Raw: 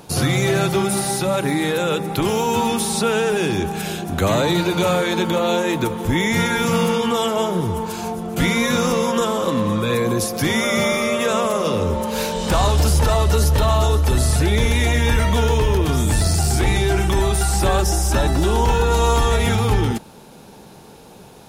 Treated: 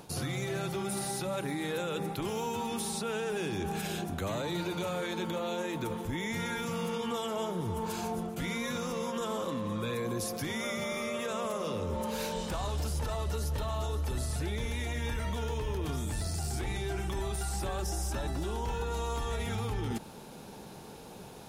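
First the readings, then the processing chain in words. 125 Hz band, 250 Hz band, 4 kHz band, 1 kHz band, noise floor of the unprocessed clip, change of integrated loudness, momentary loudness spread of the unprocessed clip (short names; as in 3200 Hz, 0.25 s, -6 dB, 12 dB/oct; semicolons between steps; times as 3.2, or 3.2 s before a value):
-16.0 dB, -15.0 dB, -15.5 dB, -15.5 dB, -43 dBFS, -15.5 dB, 4 LU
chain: reverse; compressor 5:1, threshold -26 dBFS, peak gain reduction 12 dB; reverse; limiter -21 dBFS, peak gain reduction 4.5 dB; gain -4.5 dB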